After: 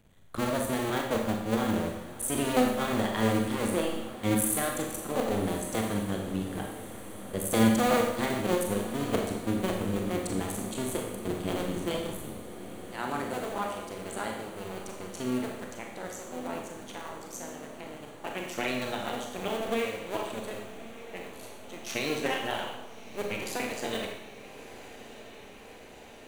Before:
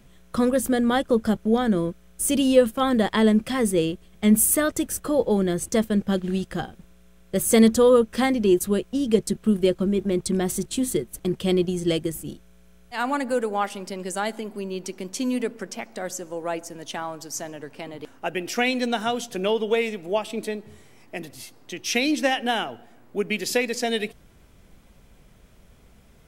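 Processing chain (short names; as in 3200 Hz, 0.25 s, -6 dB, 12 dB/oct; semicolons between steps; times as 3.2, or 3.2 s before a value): cycle switcher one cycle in 2, muted; bell 5200 Hz -10.5 dB 0.21 oct; on a send: diffused feedback echo 1.258 s, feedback 74%, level -15.5 dB; on the sum: Schroeder reverb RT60 0.86 s, combs from 28 ms, DRR 1 dB; gain -7.5 dB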